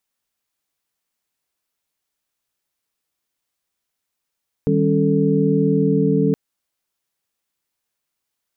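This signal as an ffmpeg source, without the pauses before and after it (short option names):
-f lavfi -i "aevalsrc='0.106*(sin(2*PI*155.56*t)+sin(2*PI*196*t)+sin(2*PI*277.18*t)+sin(2*PI*440*t))':d=1.67:s=44100"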